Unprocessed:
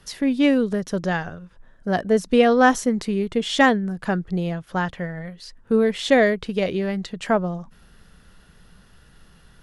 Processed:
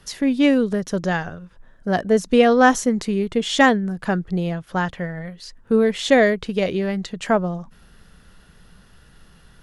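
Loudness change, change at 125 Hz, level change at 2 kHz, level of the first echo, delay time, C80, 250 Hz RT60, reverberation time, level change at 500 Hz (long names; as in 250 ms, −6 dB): +1.5 dB, +1.5 dB, +1.5 dB, no echo audible, no echo audible, no reverb audible, no reverb audible, no reverb audible, +1.5 dB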